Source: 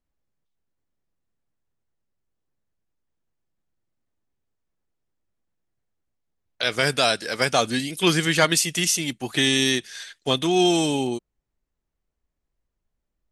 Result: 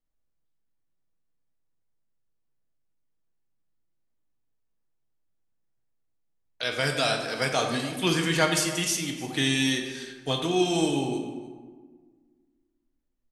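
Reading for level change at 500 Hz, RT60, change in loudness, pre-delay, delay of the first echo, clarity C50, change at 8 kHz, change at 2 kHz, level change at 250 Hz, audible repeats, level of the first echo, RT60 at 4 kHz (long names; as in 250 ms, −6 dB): −4.5 dB, 1.6 s, −4.5 dB, 4 ms, 299 ms, 5.0 dB, −5.5 dB, −4.5 dB, −3.5 dB, 1, −18.5 dB, 0.90 s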